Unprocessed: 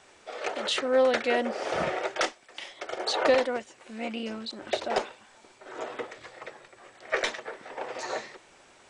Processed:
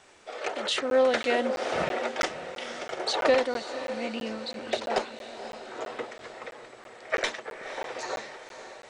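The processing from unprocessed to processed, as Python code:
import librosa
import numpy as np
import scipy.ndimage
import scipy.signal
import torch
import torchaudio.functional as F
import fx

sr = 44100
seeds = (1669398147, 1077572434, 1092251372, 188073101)

y = fx.echo_diffused(x, sr, ms=533, feedback_pct=53, wet_db=-11)
y = fx.buffer_crackle(y, sr, first_s=0.9, period_s=0.33, block=512, kind='zero')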